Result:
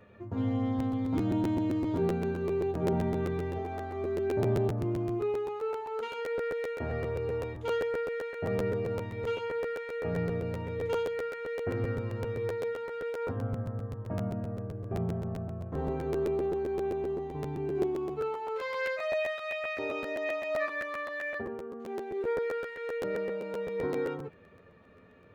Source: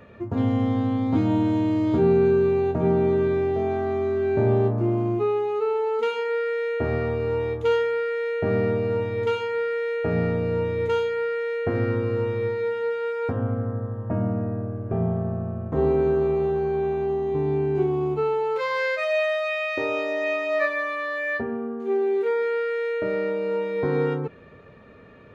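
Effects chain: flange 0.66 Hz, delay 9.6 ms, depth 2.1 ms, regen -32%; 2.88–3.59 doubler 47 ms -3.5 dB; crackling interface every 0.13 s, samples 512, repeat, from 0.78; gain -5 dB

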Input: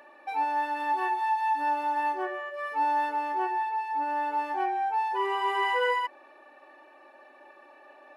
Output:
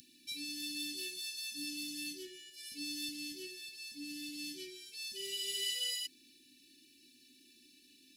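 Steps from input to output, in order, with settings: inverse Chebyshev band-stop 610–1300 Hz, stop band 80 dB; gain +17 dB

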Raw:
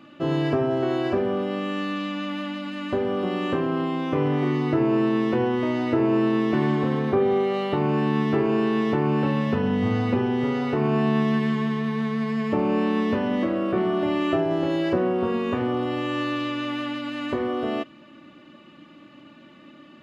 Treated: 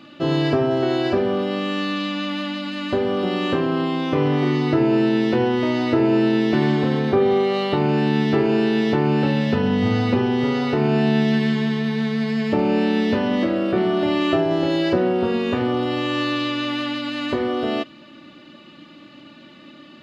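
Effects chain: bell 4300 Hz +9 dB 0.87 oct; notch 1100 Hz, Q 16; gain +3.5 dB

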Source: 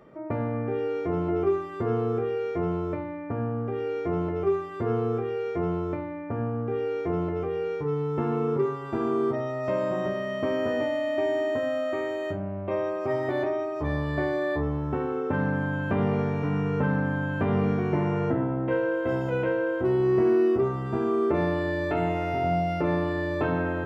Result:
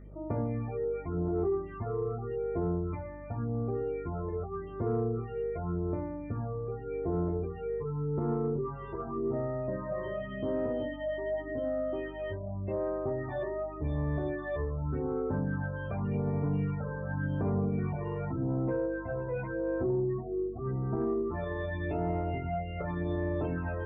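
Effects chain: notches 60/120/180/240/300/360/420/480/540/600 Hz; spectral gate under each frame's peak -25 dB strong; HPF 44 Hz 6 dB/oct; low shelf 83 Hz +10.5 dB; limiter -19 dBFS, peak gain reduction 6 dB; phaser stages 12, 0.87 Hz, lowest notch 230–3200 Hz; hum 50 Hz, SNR 16 dB; soft clip -15 dBFS, distortion -29 dB; 9.85–12.2 air absorption 150 m; gain -3.5 dB

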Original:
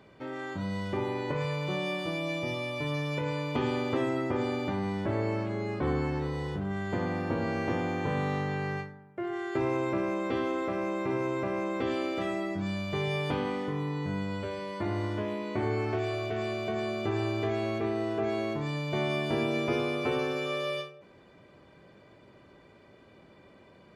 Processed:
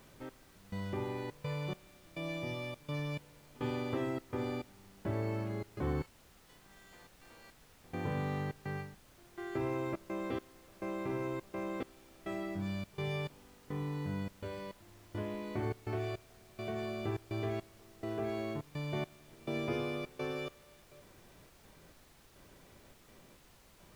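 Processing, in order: low shelf 140 Hz +7 dB; step gate "xx...xxxx." 104 bpm -24 dB; 6.02–7.84 differentiator; added noise pink -54 dBFS; gain -7.5 dB

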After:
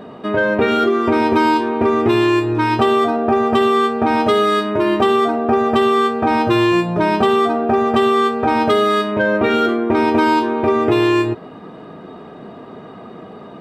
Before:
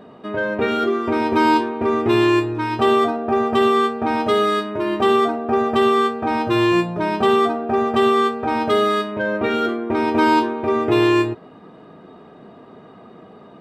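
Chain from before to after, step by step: compressor, threshold -19 dBFS, peak gain reduction 7.5 dB; gain +7.5 dB

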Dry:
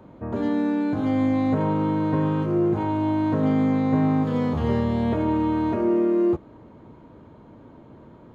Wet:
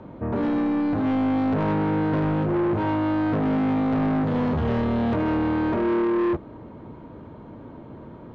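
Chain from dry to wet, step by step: air absorption 140 m; soft clip -26 dBFS, distortion -9 dB; gain +6 dB

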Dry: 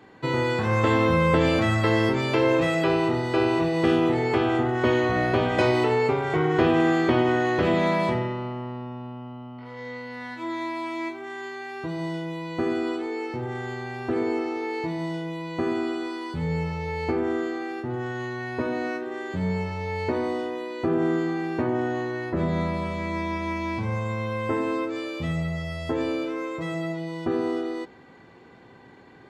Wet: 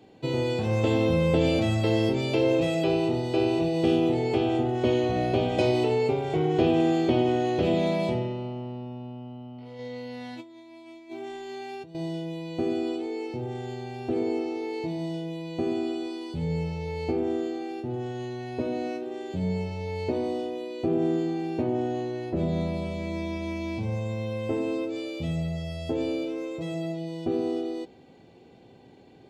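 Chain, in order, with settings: 9.79–11.95 negative-ratio compressor -36 dBFS, ratio -0.5; band shelf 1400 Hz -13 dB 1.3 oct; gain -1.5 dB

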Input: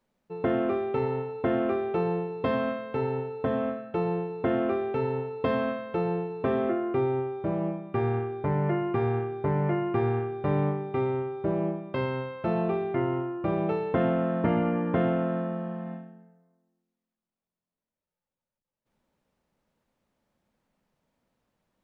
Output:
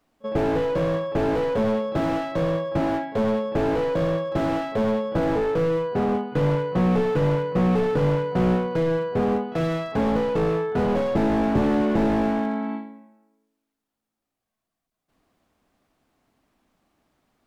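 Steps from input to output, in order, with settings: varispeed +25%; pre-echo 36 ms -24 dB; slew limiter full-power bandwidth 20 Hz; gain +7.5 dB

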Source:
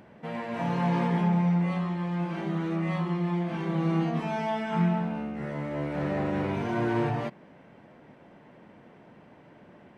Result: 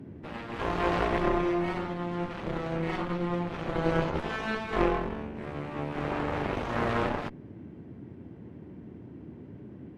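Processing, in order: added harmonics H 3 -7 dB, 4 -9 dB, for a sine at -13.5 dBFS; band noise 75–350 Hz -47 dBFS; gain +2 dB

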